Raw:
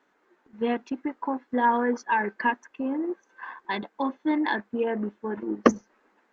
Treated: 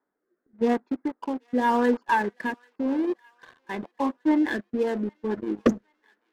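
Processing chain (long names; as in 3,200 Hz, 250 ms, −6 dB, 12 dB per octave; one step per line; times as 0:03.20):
adaptive Wiener filter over 15 samples
0:02.15–0:04.51: low-pass filter 2,700 Hz
leveller curve on the samples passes 2
rotating-speaker cabinet horn 0.9 Hz, later 8 Hz, at 0:04.58
delay with a high-pass on its return 787 ms, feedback 49%, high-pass 1,500 Hz, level −23 dB
level −3.5 dB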